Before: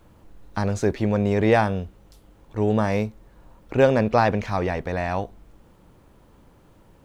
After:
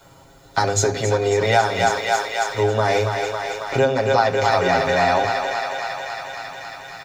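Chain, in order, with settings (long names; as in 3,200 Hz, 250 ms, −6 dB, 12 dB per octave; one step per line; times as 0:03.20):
high-pass filter 95 Hz 6 dB per octave
comb filter 7.4 ms, depth 88%
feedback echo with a high-pass in the loop 274 ms, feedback 82%, high-pass 440 Hz, level −8 dB
downward compressor 12 to 1, threshold −20 dBFS, peak gain reduction 14 dB
high-shelf EQ 4,000 Hz +4.5 dB, from 0:01.45 +9.5 dB, from 0:02.63 +4.5 dB
convolution reverb RT60 0.70 s, pre-delay 3 ms, DRR 12.5 dB
level +3 dB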